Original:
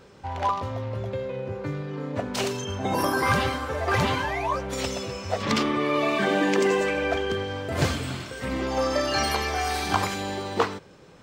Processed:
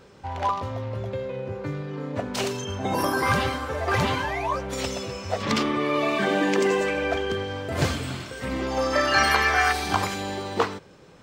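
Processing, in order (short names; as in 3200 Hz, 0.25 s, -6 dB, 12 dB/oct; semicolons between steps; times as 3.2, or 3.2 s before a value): 8.92–9.71 bell 1600 Hz +8 dB -> +14.5 dB 1.3 oct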